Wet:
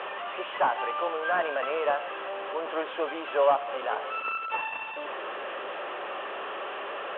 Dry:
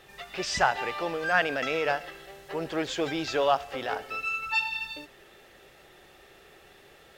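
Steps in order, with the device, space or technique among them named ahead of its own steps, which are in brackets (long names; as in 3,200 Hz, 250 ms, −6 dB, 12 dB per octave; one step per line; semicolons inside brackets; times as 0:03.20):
digital answering machine (band-pass filter 340–3,300 Hz; linear delta modulator 16 kbit/s, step −30 dBFS; loudspeaker in its box 390–3,300 Hz, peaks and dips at 580 Hz +6 dB, 1,100 Hz +8 dB, 2,100 Hz −8 dB, 3,100 Hz +4 dB)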